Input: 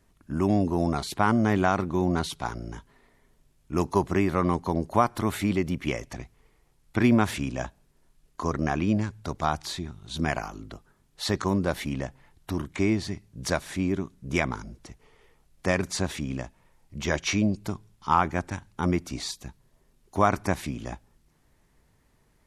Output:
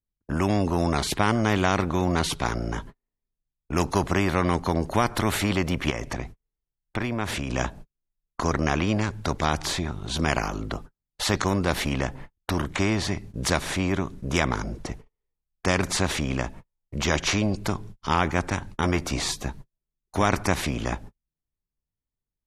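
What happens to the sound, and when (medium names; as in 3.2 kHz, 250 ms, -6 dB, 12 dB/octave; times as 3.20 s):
5.90–7.50 s: compression 2:1, threshold -40 dBFS
18.68–20.23 s: doubling 14 ms -9.5 dB
whole clip: gate -50 dBFS, range -49 dB; tilt EQ -2.5 dB/octave; spectrum-flattening compressor 2:1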